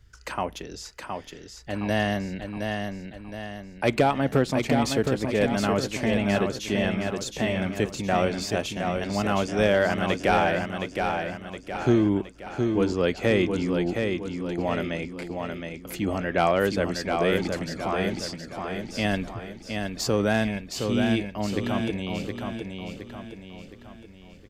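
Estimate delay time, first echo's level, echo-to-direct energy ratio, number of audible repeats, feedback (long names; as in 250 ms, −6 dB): 717 ms, −5.0 dB, −4.0 dB, 5, 46%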